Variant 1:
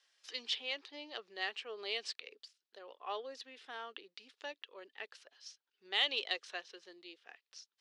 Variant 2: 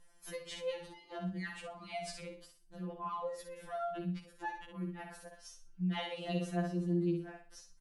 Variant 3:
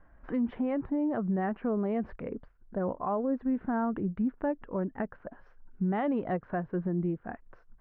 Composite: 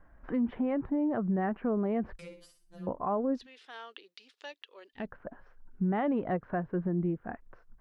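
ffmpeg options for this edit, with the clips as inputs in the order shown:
ffmpeg -i take0.wav -i take1.wav -i take2.wav -filter_complex "[2:a]asplit=3[link_01][link_02][link_03];[link_01]atrim=end=2.192[link_04];[1:a]atrim=start=2.188:end=2.872[link_05];[link_02]atrim=start=2.868:end=3.47[link_06];[0:a]atrim=start=3.31:end=5.09[link_07];[link_03]atrim=start=4.93[link_08];[link_04][link_05]acrossfade=duration=0.004:curve1=hsin:curve2=hsin[link_09];[link_09][link_06]acrossfade=duration=0.004:curve1=hsin:curve2=hsin[link_10];[link_10][link_07]acrossfade=duration=0.16:curve1=tri:curve2=tri[link_11];[link_11][link_08]acrossfade=duration=0.16:curve1=tri:curve2=tri" out.wav

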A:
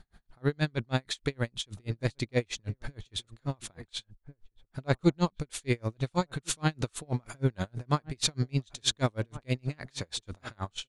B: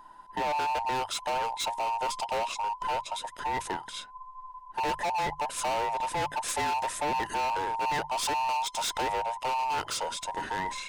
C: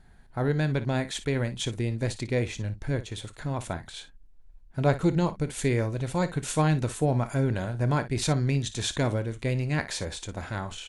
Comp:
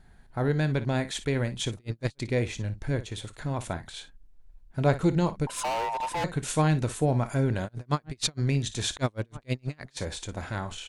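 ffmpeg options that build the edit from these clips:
ffmpeg -i take0.wav -i take1.wav -i take2.wav -filter_complex "[0:a]asplit=3[link_01][link_02][link_03];[2:a]asplit=5[link_04][link_05][link_06][link_07][link_08];[link_04]atrim=end=1.762[link_09];[link_01]atrim=start=1.758:end=2.202[link_10];[link_05]atrim=start=2.198:end=5.472[link_11];[1:a]atrim=start=5.468:end=6.242[link_12];[link_06]atrim=start=6.238:end=7.69[link_13];[link_02]atrim=start=7.65:end=8.41[link_14];[link_07]atrim=start=8.37:end=8.972[link_15];[link_03]atrim=start=8.968:end=9.972[link_16];[link_08]atrim=start=9.968[link_17];[link_09][link_10]acrossfade=duration=0.004:curve1=hsin:curve2=hsin[link_18];[link_18][link_11]acrossfade=duration=0.004:curve1=hsin:curve2=hsin[link_19];[link_19][link_12]acrossfade=duration=0.004:curve1=hsin:curve2=hsin[link_20];[link_20][link_13]acrossfade=duration=0.004:curve1=hsin:curve2=hsin[link_21];[link_21][link_14]acrossfade=duration=0.04:curve1=tri:curve2=tri[link_22];[link_22][link_15]acrossfade=duration=0.04:curve1=tri:curve2=tri[link_23];[link_23][link_16]acrossfade=duration=0.004:curve1=hsin:curve2=hsin[link_24];[link_24][link_17]acrossfade=duration=0.004:curve1=hsin:curve2=hsin" out.wav

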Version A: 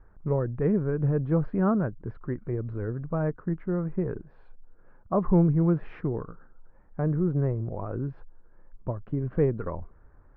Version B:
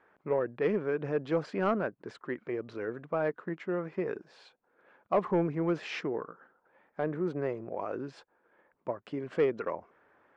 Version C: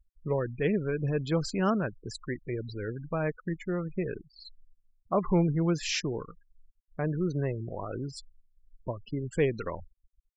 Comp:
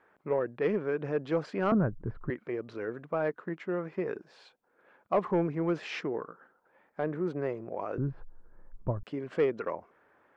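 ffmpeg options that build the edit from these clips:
ffmpeg -i take0.wav -i take1.wav -filter_complex "[0:a]asplit=2[link_01][link_02];[1:a]asplit=3[link_03][link_04][link_05];[link_03]atrim=end=1.722[link_06];[link_01]atrim=start=1.718:end=2.302[link_07];[link_04]atrim=start=2.298:end=7.982[link_08];[link_02]atrim=start=7.978:end=9.032[link_09];[link_05]atrim=start=9.028[link_10];[link_06][link_07]acrossfade=duration=0.004:curve1=hsin:curve2=hsin[link_11];[link_11][link_08]acrossfade=duration=0.004:curve1=hsin:curve2=hsin[link_12];[link_12][link_09]acrossfade=duration=0.004:curve1=hsin:curve2=hsin[link_13];[link_13][link_10]acrossfade=duration=0.004:curve1=hsin:curve2=hsin" out.wav

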